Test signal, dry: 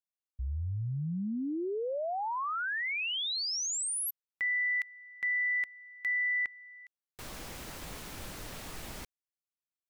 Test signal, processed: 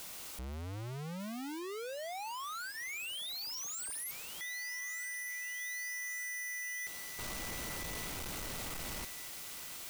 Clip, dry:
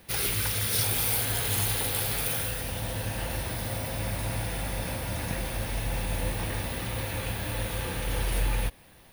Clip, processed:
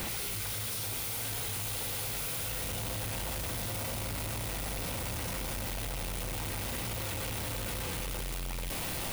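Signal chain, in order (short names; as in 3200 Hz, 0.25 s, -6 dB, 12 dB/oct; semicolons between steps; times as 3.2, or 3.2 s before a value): infinite clipping; notch 1700 Hz, Q 12; thin delay 1.2 s, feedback 46%, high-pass 1600 Hz, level -10.5 dB; gain -6 dB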